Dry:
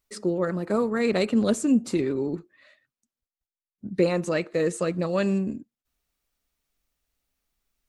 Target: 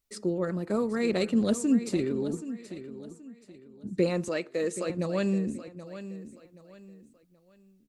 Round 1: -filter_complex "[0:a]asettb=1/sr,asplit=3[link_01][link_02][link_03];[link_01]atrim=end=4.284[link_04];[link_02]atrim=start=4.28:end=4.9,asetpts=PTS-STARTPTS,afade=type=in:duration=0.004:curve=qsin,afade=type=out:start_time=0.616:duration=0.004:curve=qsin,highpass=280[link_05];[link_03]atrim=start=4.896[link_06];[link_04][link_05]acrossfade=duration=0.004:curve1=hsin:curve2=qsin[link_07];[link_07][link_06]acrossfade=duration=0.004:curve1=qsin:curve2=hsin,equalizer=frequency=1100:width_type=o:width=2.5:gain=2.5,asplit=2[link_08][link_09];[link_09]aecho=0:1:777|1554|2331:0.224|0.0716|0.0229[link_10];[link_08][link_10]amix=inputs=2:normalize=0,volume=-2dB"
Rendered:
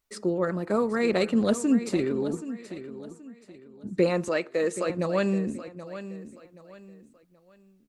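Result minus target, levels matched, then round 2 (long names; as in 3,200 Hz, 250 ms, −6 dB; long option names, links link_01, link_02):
1,000 Hz band +4.0 dB
-filter_complex "[0:a]asettb=1/sr,asplit=3[link_01][link_02][link_03];[link_01]atrim=end=4.284[link_04];[link_02]atrim=start=4.28:end=4.9,asetpts=PTS-STARTPTS,afade=type=in:duration=0.004:curve=qsin,afade=type=out:start_time=0.616:duration=0.004:curve=qsin,highpass=280[link_05];[link_03]atrim=start=4.896[link_06];[link_04][link_05]acrossfade=duration=0.004:curve1=hsin:curve2=qsin[link_07];[link_07][link_06]acrossfade=duration=0.004:curve1=qsin:curve2=hsin,equalizer=frequency=1100:width_type=o:width=2.5:gain=-4.5,asplit=2[link_08][link_09];[link_09]aecho=0:1:777|1554|2331:0.224|0.0716|0.0229[link_10];[link_08][link_10]amix=inputs=2:normalize=0,volume=-2dB"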